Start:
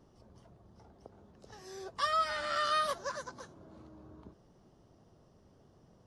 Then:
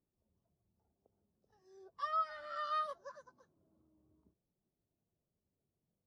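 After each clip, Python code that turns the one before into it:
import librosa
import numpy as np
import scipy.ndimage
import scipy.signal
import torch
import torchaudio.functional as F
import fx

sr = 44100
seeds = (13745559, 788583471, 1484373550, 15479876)

y = fx.hum_notches(x, sr, base_hz=60, count=2)
y = fx.spectral_expand(y, sr, expansion=1.5)
y = y * 10.0 ** (-6.5 / 20.0)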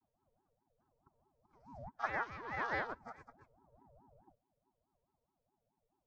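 y = fx.chord_vocoder(x, sr, chord='bare fifth', root=58)
y = fx.ring_lfo(y, sr, carrier_hz=420.0, swing_pct=50, hz=4.7)
y = y * 10.0 ** (3.0 / 20.0)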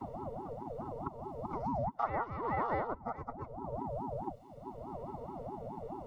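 y = scipy.signal.savgol_filter(x, 65, 4, mode='constant')
y = fx.band_squash(y, sr, depth_pct=100)
y = y * 10.0 ** (14.5 / 20.0)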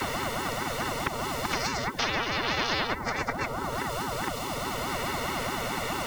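y = fx.spectral_comp(x, sr, ratio=10.0)
y = y * 10.0 ** (8.0 / 20.0)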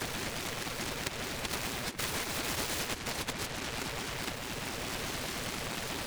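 y = scipy.ndimage.gaussian_filter1d(x, 1.6, mode='constant')
y = fx.noise_mod_delay(y, sr, seeds[0], noise_hz=1500.0, depth_ms=0.3)
y = y * 10.0 ** (-5.5 / 20.0)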